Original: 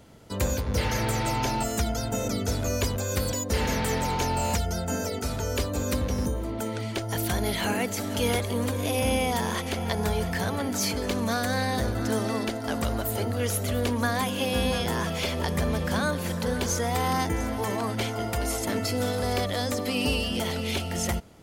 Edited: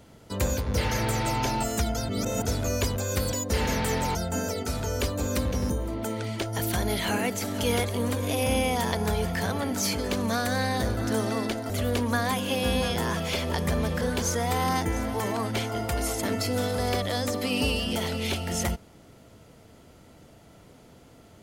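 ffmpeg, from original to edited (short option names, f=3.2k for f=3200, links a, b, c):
-filter_complex "[0:a]asplit=7[a][b][c][d][e][f][g];[a]atrim=end=2.092[h];[b]atrim=start=2.088:end=2.452,asetpts=PTS-STARTPTS,areverse[i];[c]atrim=start=2.448:end=4.152[j];[d]atrim=start=4.708:end=9.482[k];[e]atrim=start=9.898:end=12.682[l];[f]atrim=start=13.598:end=15.912[m];[g]atrim=start=16.448[n];[h][i]acrossfade=d=0.004:c1=hsin:c2=hsin[o];[o][j]acrossfade=d=0.004:c1=hsin:c2=hsin[p];[p][k]acrossfade=d=0.004:c1=hsin:c2=hsin[q];[q][l]acrossfade=d=0.004:c1=hsin:c2=hsin[r];[r][m]acrossfade=d=0.004:c1=hsin:c2=hsin[s];[s][n]acrossfade=d=0.004:c1=hsin:c2=hsin"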